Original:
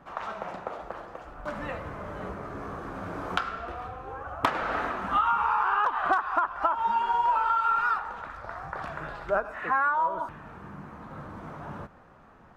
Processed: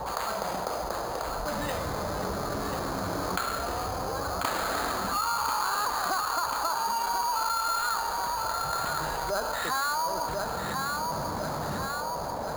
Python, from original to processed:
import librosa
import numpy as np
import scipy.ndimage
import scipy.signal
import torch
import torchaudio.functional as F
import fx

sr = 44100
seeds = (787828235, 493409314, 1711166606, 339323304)

p1 = fx.add_hum(x, sr, base_hz=60, snr_db=28)
p2 = fx.sample_hold(p1, sr, seeds[0], rate_hz=5600.0, jitter_pct=0)
p3 = fx.dmg_noise_band(p2, sr, seeds[1], low_hz=440.0, high_hz=1000.0, level_db=-45.0)
p4 = p3 + fx.echo_feedback(p3, sr, ms=1040, feedback_pct=47, wet_db=-9, dry=0)
p5 = fx.env_flatten(p4, sr, amount_pct=70)
y = p5 * librosa.db_to_amplitude(-6.5)